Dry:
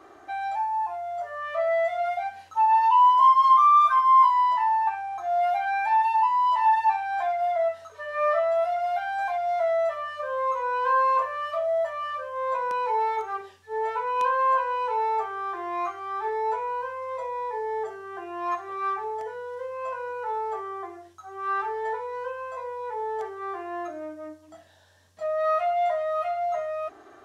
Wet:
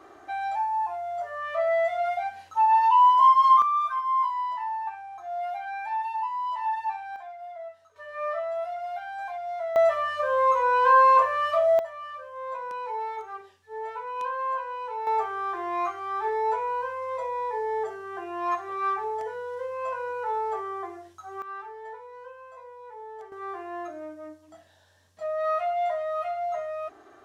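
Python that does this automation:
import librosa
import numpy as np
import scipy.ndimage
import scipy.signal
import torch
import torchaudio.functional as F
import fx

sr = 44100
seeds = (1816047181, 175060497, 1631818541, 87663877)

y = fx.gain(x, sr, db=fx.steps((0.0, 0.0), (3.62, -8.0), (7.16, -15.0), (7.96, -7.0), (9.76, 5.0), (11.79, -7.0), (15.07, 1.0), (21.42, -11.0), (23.32, -2.5)))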